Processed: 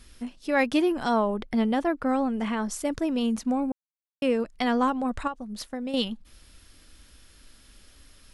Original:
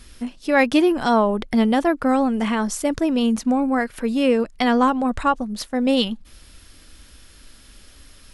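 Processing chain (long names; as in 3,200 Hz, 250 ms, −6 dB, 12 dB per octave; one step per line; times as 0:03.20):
0:01.34–0:02.71: high-shelf EQ 5,300 Hz −6.5 dB
0:03.72–0:04.22: silence
0:05.27–0:05.94: downward compressor 6 to 1, threshold −24 dBFS, peak gain reduction 10 dB
level −6.5 dB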